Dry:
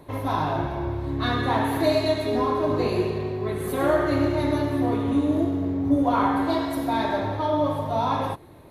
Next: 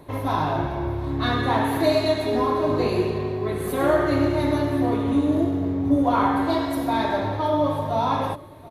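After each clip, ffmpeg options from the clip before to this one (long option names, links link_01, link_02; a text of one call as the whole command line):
ffmpeg -i in.wav -af "aecho=1:1:728:0.1,volume=1.5dB" out.wav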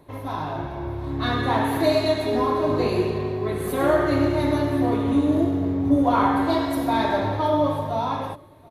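ffmpeg -i in.wav -af "dynaudnorm=framelen=120:gausssize=17:maxgain=11.5dB,volume=-6dB" out.wav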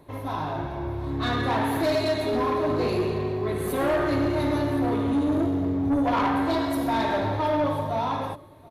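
ffmpeg -i in.wav -af "asoftclip=type=tanh:threshold=-18.5dB" out.wav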